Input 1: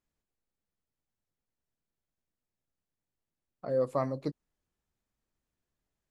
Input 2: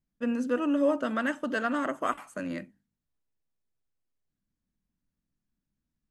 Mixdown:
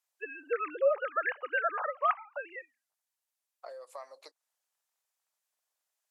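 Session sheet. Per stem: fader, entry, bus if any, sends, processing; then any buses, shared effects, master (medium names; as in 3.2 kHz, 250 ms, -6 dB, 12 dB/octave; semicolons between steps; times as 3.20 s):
-1.5 dB, 0.00 s, no send, treble shelf 3.9 kHz +12 dB; compression 10:1, threshold -35 dBFS, peak gain reduction 12 dB
+2.5 dB, 0.00 s, no send, formants replaced by sine waves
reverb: none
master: inverse Chebyshev high-pass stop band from 180 Hz, stop band 60 dB; low-pass that closes with the level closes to 2.7 kHz, closed at -30.5 dBFS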